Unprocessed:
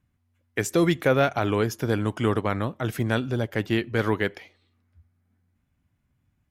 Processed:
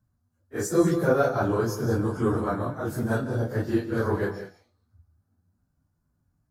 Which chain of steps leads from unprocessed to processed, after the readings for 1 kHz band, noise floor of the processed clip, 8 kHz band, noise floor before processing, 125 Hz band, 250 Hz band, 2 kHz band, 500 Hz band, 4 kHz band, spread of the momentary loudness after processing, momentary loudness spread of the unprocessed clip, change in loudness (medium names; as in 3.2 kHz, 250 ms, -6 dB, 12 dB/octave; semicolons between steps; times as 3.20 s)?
-1.5 dB, -74 dBFS, -0.5 dB, -73 dBFS, -1.0 dB, -0.5 dB, -5.0 dB, 0.0 dB, -10.5 dB, 9 LU, 7 LU, -1.0 dB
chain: phase randomisation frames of 100 ms; high-order bell 2.6 kHz -15.5 dB 1.1 oct; gated-style reverb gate 220 ms rising, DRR 9 dB; trim -1.5 dB